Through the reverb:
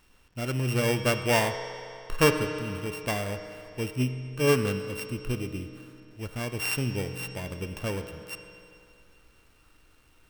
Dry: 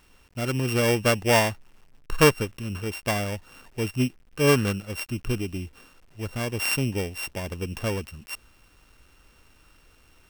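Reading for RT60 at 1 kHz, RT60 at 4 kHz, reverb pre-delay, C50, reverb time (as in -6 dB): 2.6 s, 2.4 s, 7 ms, 8.0 dB, 2.6 s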